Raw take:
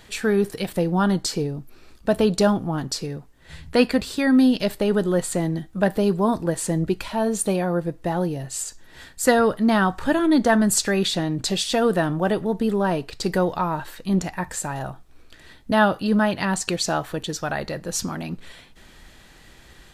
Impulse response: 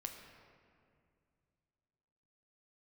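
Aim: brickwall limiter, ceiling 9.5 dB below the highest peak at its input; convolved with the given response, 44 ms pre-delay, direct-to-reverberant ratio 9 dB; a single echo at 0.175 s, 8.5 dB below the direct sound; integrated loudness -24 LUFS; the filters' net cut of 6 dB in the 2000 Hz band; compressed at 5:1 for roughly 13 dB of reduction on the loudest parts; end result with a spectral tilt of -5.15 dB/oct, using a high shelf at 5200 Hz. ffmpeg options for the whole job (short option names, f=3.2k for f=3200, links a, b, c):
-filter_complex "[0:a]equalizer=f=2k:t=o:g=-7,highshelf=f=5.2k:g=-8,acompressor=threshold=-28dB:ratio=5,alimiter=limit=-23dB:level=0:latency=1,aecho=1:1:175:0.376,asplit=2[a][b];[1:a]atrim=start_sample=2205,adelay=44[c];[b][c]afir=irnorm=-1:irlink=0,volume=-6.5dB[d];[a][d]amix=inputs=2:normalize=0,volume=8.5dB"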